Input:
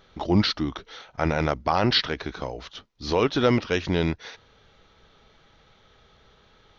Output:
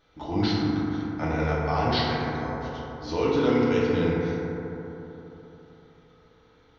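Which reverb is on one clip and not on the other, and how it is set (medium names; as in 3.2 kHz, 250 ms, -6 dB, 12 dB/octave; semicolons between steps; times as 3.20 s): FDN reverb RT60 3.6 s, high-frequency decay 0.25×, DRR -8 dB; trim -11 dB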